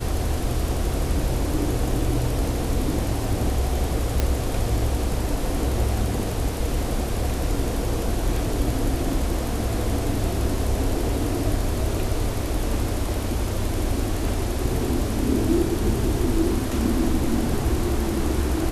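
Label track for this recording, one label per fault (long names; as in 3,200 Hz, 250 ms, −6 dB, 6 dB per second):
4.200000	4.200000	click −7 dBFS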